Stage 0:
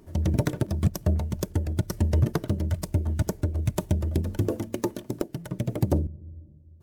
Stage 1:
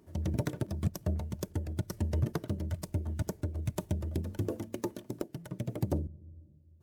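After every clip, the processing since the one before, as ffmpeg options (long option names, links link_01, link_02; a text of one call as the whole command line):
ffmpeg -i in.wav -af "highpass=60,volume=-7.5dB" out.wav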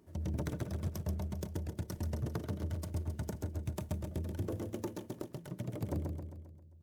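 ffmpeg -i in.wav -filter_complex "[0:a]asoftclip=type=tanh:threshold=-25.5dB,asplit=2[link_01][link_02];[link_02]aecho=0:1:133|266|399|532|665|798:0.562|0.287|0.146|0.0746|0.038|0.0194[link_03];[link_01][link_03]amix=inputs=2:normalize=0,volume=-3dB" out.wav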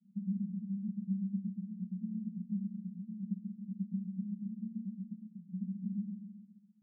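ffmpeg -i in.wav -af "asuperpass=centerf=200:order=8:qfactor=4.4,volume=10.5dB" out.wav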